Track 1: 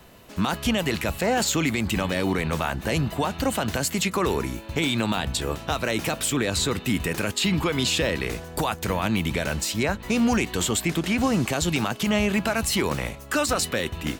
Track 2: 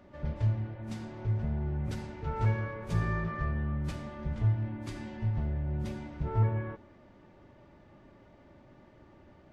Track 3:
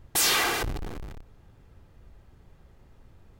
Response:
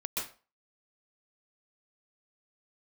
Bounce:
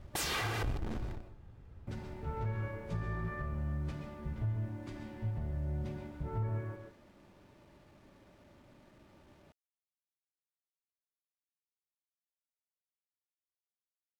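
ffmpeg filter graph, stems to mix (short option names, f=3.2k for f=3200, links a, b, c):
-filter_complex "[1:a]acrusher=bits=9:mix=0:aa=0.000001,volume=-8.5dB,asplit=3[a][b][c];[a]atrim=end=1.16,asetpts=PTS-STARTPTS,afade=t=out:st=1.156:d=0.004:c=hsin[d];[b]atrim=start=1.16:end=1.87,asetpts=PTS-STARTPTS,volume=0[e];[c]atrim=start=1.87,asetpts=PTS-STARTPTS,afade=t=in:d=0.004:c=hsin[f];[d][e][f]concat=n=3:v=0:a=1,asplit=2[g][h];[h]volume=-5.5dB[i];[2:a]equalizer=f=81:w=0.61:g=5,volume=-4.5dB,asplit=2[j][k];[k]volume=-19.5dB[l];[3:a]atrim=start_sample=2205[m];[i][l]amix=inputs=2:normalize=0[n];[n][m]afir=irnorm=-1:irlink=0[o];[g][j][o]amix=inputs=3:normalize=0,aemphasis=mode=reproduction:type=cd,alimiter=level_in=3.5dB:limit=-24dB:level=0:latency=1:release=193,volume=-3.5dB"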